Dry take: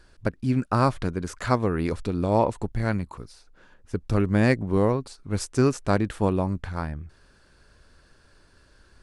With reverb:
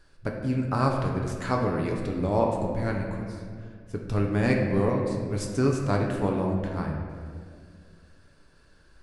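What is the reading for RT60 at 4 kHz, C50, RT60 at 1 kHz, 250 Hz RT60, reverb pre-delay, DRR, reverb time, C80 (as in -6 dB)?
1.3 s, 3.0 dB, 1.7 s, 2.6 s, 7 ms, 0.0 dB, 2.1 s, 4.5 dB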